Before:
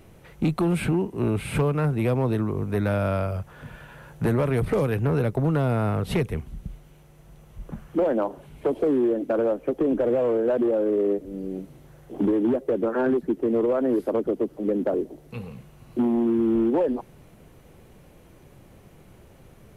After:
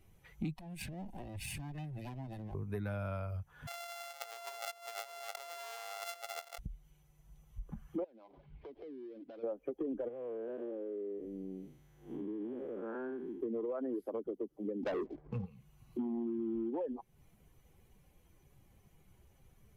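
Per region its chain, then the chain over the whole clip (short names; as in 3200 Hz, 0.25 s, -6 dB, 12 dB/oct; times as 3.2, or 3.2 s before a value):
0.58–2.55 minimum comb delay 1.1 ms + bell 1200 Hz -9.5 dB 0.56 oct + compressor 12:1, threshold -31 dBFS
3.67–6.59 sample sorter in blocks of 64 samples + HPF 500 Hz 24 dB/oct + negative-ratio compressor -37 dBFS
8.04–9.44 switching dead time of 0.16 ms + compressor 12:1, threshold -36 dBFS + air absorption 260 m
10.08–13.41 time blur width 0.202 s + bell 2200 Hz +4 dB 2.2 oct + compressor 4:1, threshold -27 dBFS
14.83–15.46 LPF 1200 Hz + sample leveller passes 3
whole clip: per-bin expansion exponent 1.5; compressor 3:1, threshold -42 dBFS; gain +1.5 dB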